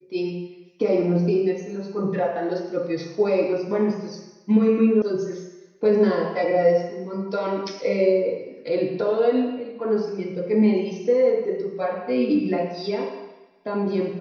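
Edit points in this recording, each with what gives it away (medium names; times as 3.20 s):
5.02 s: sound stops dead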